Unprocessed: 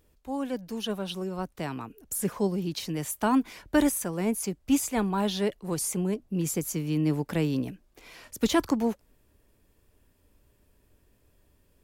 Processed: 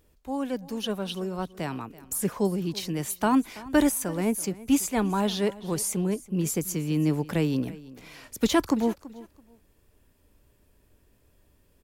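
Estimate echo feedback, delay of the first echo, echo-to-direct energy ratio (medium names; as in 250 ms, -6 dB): 21%, 332 ms, -19.0 dB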